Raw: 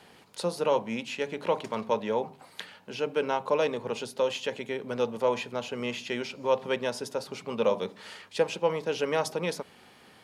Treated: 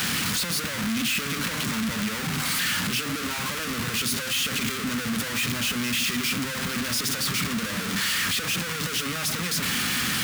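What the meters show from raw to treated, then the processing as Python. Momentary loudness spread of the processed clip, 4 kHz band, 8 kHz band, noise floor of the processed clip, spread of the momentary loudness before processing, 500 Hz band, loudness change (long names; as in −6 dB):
4 LU, +13.5 dB, +18.0 dB, −31 dBFS, 10 LU, −11.5 dB, +5.0 dB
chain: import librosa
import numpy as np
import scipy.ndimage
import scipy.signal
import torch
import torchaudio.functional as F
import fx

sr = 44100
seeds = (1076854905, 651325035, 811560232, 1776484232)

y = np.sign(x) * np.sqrt(np.mean(np.square(x)))
y = scipy.signal.sosfilt(scipy.signal.butter(2, 62.0, 'highpass', fs=sr, output='sos'), y)
y = fx.band_shelf(y, sr, hz=580.0, db=-14.0, octaves=1.7)
y = y * librosa.db_to_amplitude(6.0)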